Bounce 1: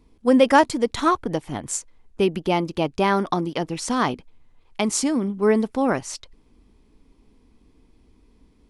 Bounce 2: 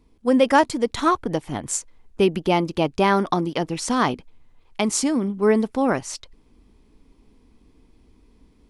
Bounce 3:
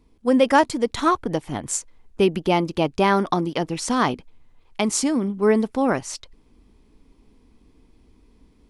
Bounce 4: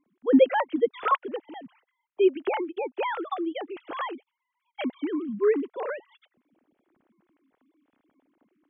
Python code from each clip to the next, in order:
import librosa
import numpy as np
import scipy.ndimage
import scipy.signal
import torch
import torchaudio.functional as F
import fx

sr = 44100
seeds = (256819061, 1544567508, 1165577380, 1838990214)

y1 = fx.rider(x, sr, range_db=3, speed_s=2.0)
y2 = y1
y3 = fx.sine_speech(y2, sr)
y3 = y3 * librosa.db_to_amplitude(-5.5)